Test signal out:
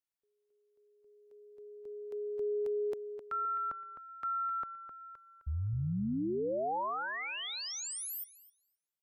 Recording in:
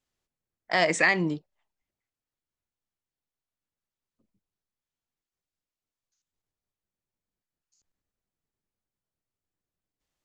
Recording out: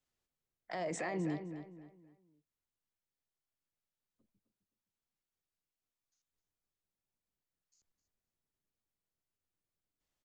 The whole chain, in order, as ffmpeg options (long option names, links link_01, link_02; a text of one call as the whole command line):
ffmpeg -i in.wav -filter_complex "[0:a]acrossover=split=300|930[link_01][link_02][link_03];[link_03]acompressor=threshold=-35dB:ratio=6[link_04];[link_01][link_02][link_04]amix=inputs=3:normalize=0,alimiter=level_in=1.5dB:limit=-24dB:level=0:latency=1:release=17,volume=-1.5dB,asplit=2[link_05][link_06];[link_06]adelay=259,lowpass=frequency=3500:poles=1,volume=-9dB,asplit=2[link_07][link_08];[link_08]adelay=259,lowpass=frequency=3500:poles=1,volume=0.35,asplit=2[link_09][link_10];[link_10]adelay=259,lowpass=frequency=3500:poles=1,volume=0.35,asplit=2[link_11][link_12];[link_12]adelay=259,lowpass=frequency=3500:poles=1,volume=0.35[link_13];[link_05][link_07][link_09][link_11][link_13]amix=inputs=5:normalize=0,volume=-4.5dB" out.wav